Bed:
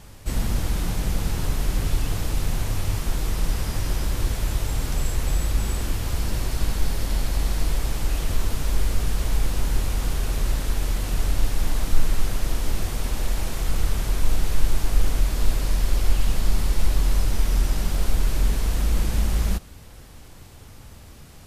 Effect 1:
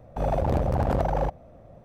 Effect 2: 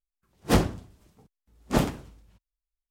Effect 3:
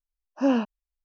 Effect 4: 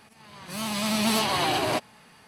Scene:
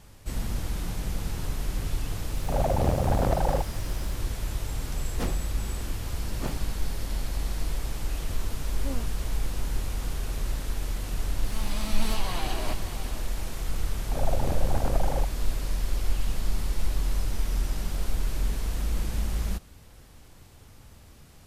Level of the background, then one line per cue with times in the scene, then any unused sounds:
bed -6.5 dB
2.32 add 1 -1 dB + requantised 10-bit, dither triangular
4.69 add 2 -12 dB
8.42 add 3 -16 dB
10.95 add 4 -10 dB + echo 0.574 s -11 dB
13.95 add 1 -6 dB

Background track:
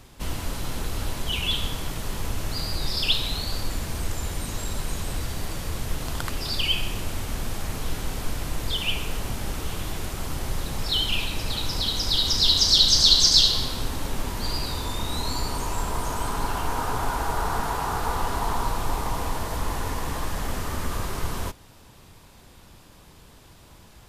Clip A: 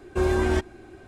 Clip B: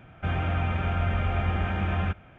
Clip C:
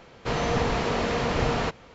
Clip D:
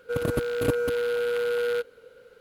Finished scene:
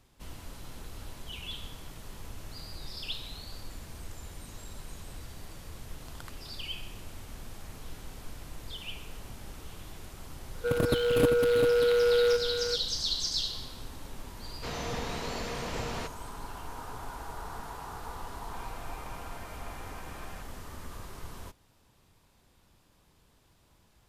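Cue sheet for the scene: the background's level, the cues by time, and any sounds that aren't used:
background track -14.5 dB
10.55 add D -0.5 dB + echo 0.394 s -6.5 dB
14.37 add C -11.5 dB + high shelf 4600 Hz +11.5 dB
18.3 add B -15 dB + HPF 350 Hz
not used: A

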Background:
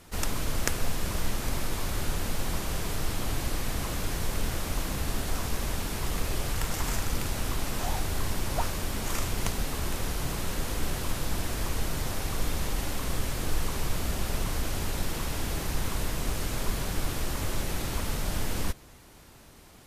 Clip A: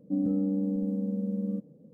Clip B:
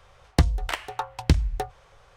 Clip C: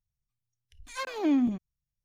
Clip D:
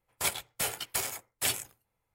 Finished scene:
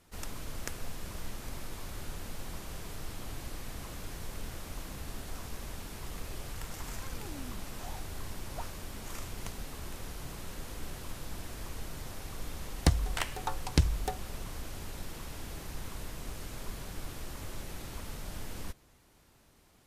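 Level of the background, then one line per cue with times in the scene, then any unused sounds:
background -11 dB
6.04 add C -16 dB + compressor, threshold -29 dBFS
12.48 add B -6 dB + bell 9000 Hz +7.5 dB 1.7 oct
not used: A, D

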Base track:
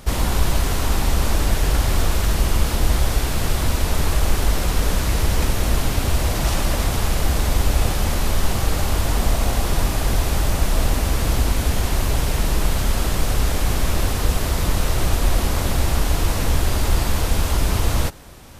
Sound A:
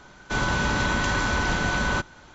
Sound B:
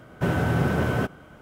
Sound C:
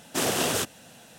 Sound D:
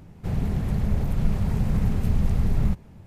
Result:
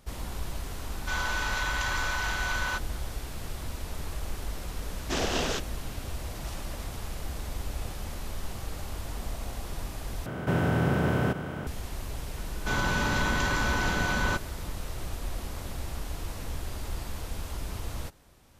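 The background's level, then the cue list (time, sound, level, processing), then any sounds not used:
base track -16.5 dB
0.77 add A -4 dB + HPF 840 Hz
4.95 add C -3 dB + inverse Chebyshev low-pass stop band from 11000 Hz
10.26 replace with B -5.5 dB + per-bin compression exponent 0.4
12.36 add A -3.5 dB
not used: D

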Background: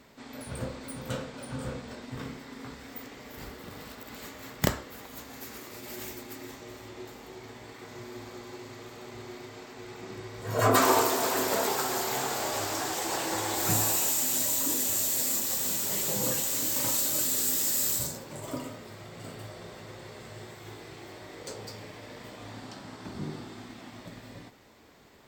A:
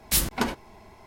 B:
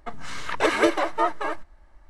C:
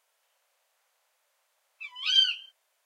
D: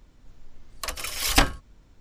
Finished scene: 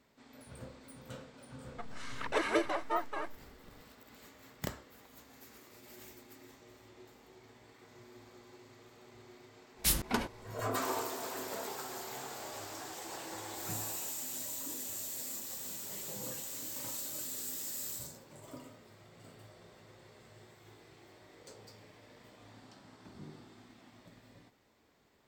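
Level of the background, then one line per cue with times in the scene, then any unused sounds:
background -13 dB
1.72 add B -10.5 dB
9.73 add A -6.5 dB, fades 0.10 s
not used: C, D

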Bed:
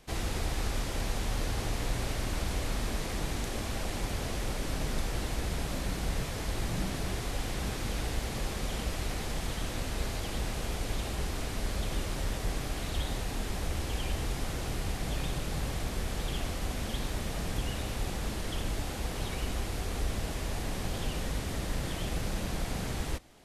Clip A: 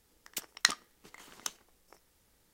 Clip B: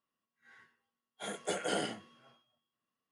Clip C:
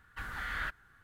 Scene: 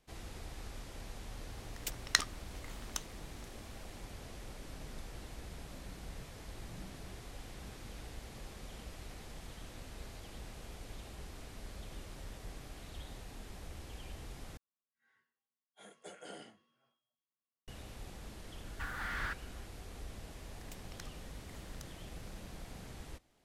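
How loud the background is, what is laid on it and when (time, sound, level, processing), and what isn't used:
bed -14.5 dB
1.5 add A -2.5 dB
14.57 replace with B -15.5 dB
18.63 add C -0.5 dB + slew limiter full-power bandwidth 26 Hz
20.35 add A -8 dB + compressor, threshold -41 dBFS

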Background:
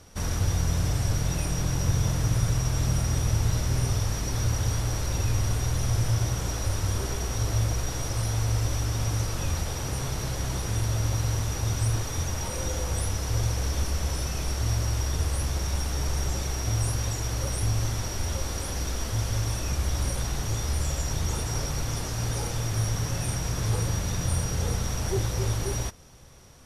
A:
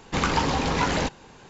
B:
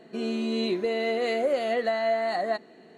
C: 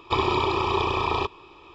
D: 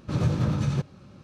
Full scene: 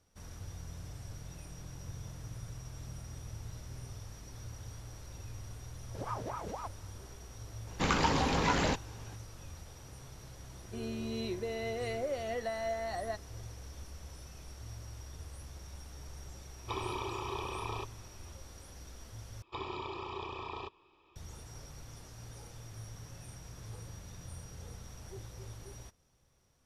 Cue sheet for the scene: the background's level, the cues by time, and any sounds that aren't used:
background -20 dB
5.86 add D -13.5 dB + ring modulator with a swept carrier 710 Hz, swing 60%, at 4 Hz
7.67 add A -5.5 dB
10.59 add B -10.5 dB
16.58 add C -15 dB
19.42 replace with C -17.5 dB

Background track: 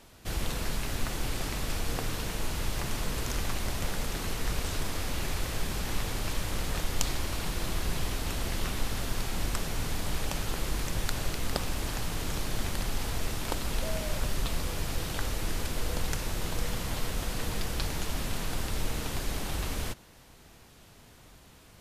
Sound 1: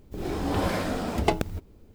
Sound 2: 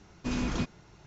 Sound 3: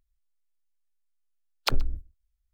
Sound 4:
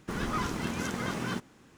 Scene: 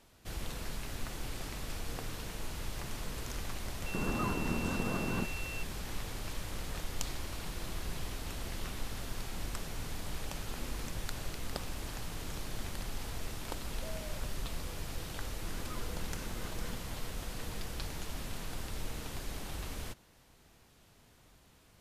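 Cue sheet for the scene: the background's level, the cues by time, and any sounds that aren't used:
background track -8 dB
3.86 add 4 -1.5 dB + pulse-width modulation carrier 2700 Hz
10.25 add 2 -16.5 dB + HPF 230 Hz
15.37 add 4 -16 dB
not used: 1, 3

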